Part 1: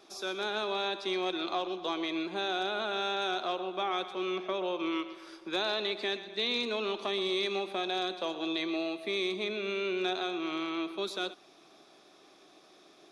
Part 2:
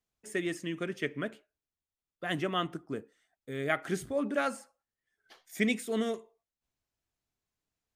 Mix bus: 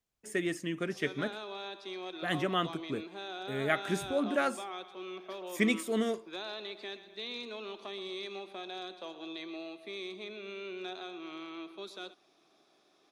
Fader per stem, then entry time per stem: −9.5, +0.5 decibels; 0.80, 0.00 seconds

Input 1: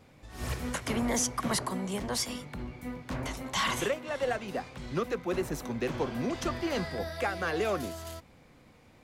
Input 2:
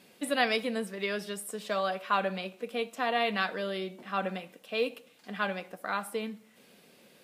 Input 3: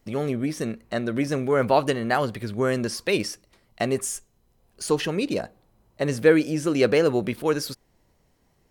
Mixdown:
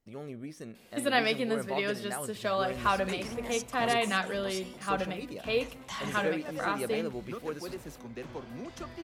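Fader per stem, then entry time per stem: −9.5, +0.5, −15.5 decibels; 2.35, 0.75, 0.00 seconds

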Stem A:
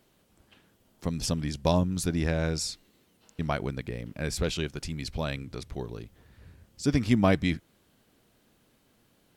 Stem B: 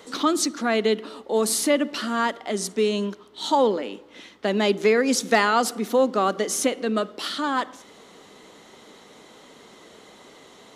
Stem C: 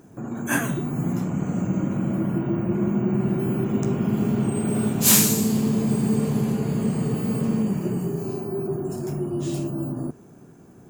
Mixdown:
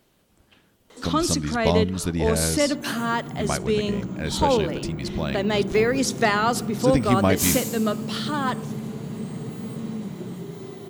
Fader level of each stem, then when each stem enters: +2.5, −1.5, −8.5 decibels; 0.00, 0.90, 2.35 seconds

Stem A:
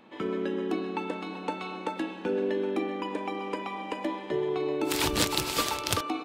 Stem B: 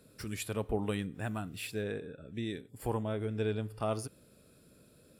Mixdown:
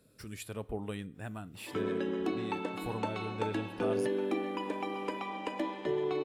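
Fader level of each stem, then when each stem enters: −3.0, −5.0 decibels; 1.55, 0.00 seconds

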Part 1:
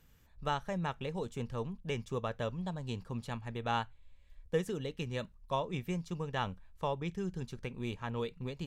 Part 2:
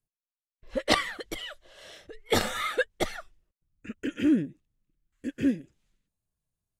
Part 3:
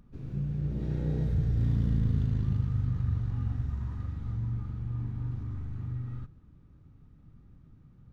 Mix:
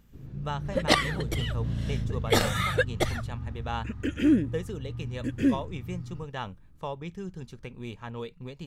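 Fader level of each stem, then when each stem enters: −0.5, +1.5, −4.0 decibels; 0.00, 0.00, 0.00 seconds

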